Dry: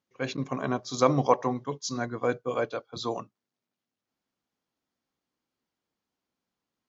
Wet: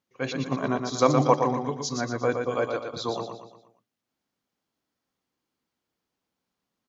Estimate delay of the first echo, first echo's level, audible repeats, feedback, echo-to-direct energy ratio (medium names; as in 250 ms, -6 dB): 118 ms, -5.5 dB, 5, 44%, -4.5 dB